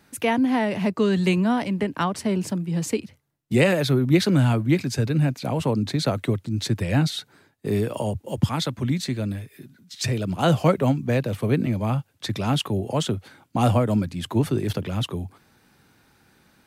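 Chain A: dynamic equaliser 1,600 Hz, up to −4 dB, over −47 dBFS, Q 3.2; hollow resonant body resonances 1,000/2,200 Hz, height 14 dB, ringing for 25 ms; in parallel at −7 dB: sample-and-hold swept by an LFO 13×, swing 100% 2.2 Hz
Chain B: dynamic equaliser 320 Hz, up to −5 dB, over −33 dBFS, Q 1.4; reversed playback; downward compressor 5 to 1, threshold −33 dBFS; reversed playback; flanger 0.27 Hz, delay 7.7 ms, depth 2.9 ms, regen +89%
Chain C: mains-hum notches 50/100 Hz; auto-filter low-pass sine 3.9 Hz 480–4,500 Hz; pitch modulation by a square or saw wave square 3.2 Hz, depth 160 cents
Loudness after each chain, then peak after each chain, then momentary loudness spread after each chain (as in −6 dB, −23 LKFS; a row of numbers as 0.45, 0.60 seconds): −20.0, −40.5, −22.5 LKFS; −1.5, −26.5, −2.0 dBFS; 9, 5, 10 LU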